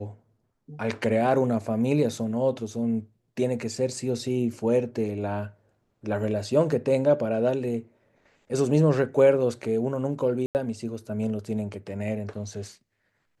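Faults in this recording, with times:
10.46–10.55 gap 89 ms

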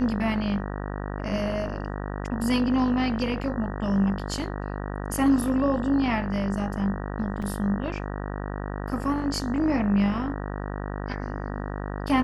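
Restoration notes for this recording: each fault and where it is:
buzz 50 Hz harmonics 38 -32 dBFS
7.42–7.43 gap 5.2 ms

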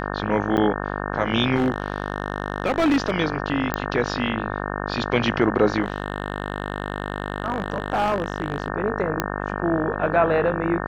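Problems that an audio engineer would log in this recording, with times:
buzz 50 Hz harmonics 36 -28 dBFS
0.57–0.58 gap 7.7 ms
1.55–3.11 clipped -15 dBFS
3.74 pop -8 dBFS
5.84–8.68 clipped -16.5 dBFS
9.2 pop -5 dBFS

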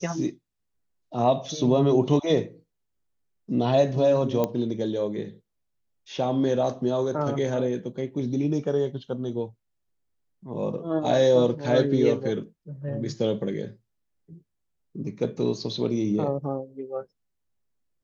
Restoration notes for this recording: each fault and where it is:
4.44 pop -12 dBFS

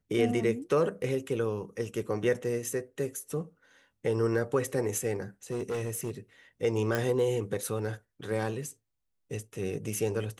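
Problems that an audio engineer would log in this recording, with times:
5.51–6.11 clipped -28.5 dBFS
6.95 pop -15 dBFS

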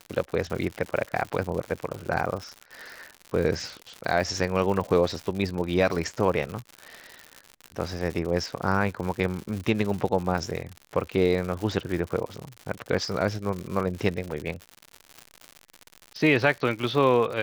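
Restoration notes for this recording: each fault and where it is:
crackle 140/s -31 dBFS

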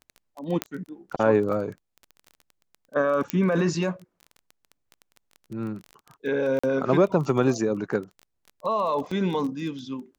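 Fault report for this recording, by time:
crackle 18/s -33 dBFS
0.62 pop -9 dBFS
3.3 pop -10 dBFS
6.59–6.63 gap 45 ms
9.11 gap 4.4 ms

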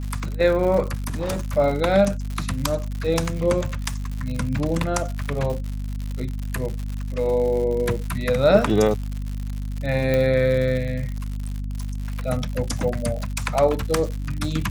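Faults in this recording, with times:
crackle 120/s -28 dBFS
hum 50 Hz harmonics 5 -28 dBFS
0.94–1.45 clipped -21.5 dBFS
10.14 pop -10 dBFS

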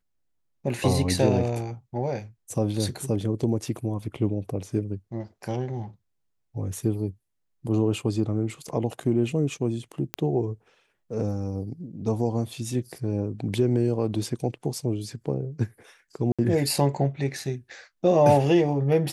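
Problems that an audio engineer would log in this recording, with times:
10.14 pop -10 dBFS
16.32–16.39 gap 66 ms

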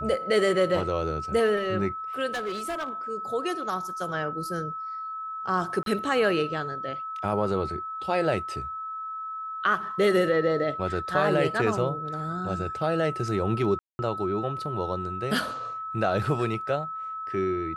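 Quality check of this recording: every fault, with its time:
tone 1300 Hz -32 dBFS
2.34–2.9 clipped -27 dBFS
5.83–5.86 gap 32 ms
13.79–13.99 gap 0.201 s

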